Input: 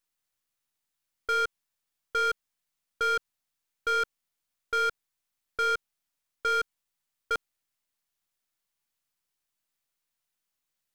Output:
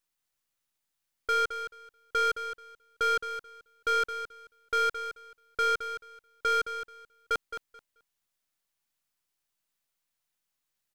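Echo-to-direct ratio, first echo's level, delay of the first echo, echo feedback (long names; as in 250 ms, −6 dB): −10.0 dB, −10.0 dB, 217 ms, 18%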